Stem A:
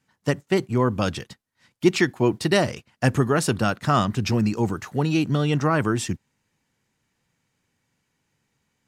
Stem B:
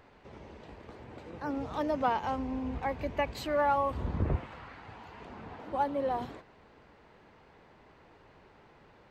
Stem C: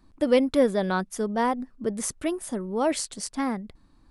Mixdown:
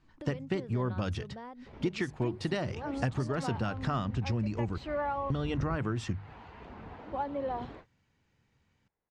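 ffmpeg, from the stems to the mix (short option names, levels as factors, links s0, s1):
-filter_complex "[0:a]equalizer=f=85:w=1.5:g=6.5,bandreject=f=50:t=h:w=6,bandreject=f=100:t=h:w=6,bandreject=f=150:t=h:w=6,volume=0.841,asplit=3[s0][s1][s2];[s0]atrim=end=4.78,asetpts=PTS-STARTPTS,afade=t=out:st=4.776:d=0.004:c=hsin[s3];[s1]atrim=start=4.78:end=5.3,asetpts=PTS-STARTPTS,volume=0[s4];[s2]atrim=start=5.3,asetpts=PTS-STARTPTS,afade=t=in:d=0.004:c=hsin[s5];[s3][s4][s5]concat=n=3:v=0:a=1[s6];[1:a]agate=range=0.0316:threshold=0.00316:ratio=16:detection=peak,adelay=1400,volume=0.794[s7];[2:a]alimiter=limit=0.133:level=0:latency=1,acompressor=threshold=0.0141:ratio=4,volume=0.422[s8];[s6][s7]amix=inputs=2:normalize=0,lowshelf=f=78:g=9,acompressor=threshold=0.0355:ratio=6,volume=1[s9];[s8][s9]amix=inputs=2:normalize=0,lowpass=4600"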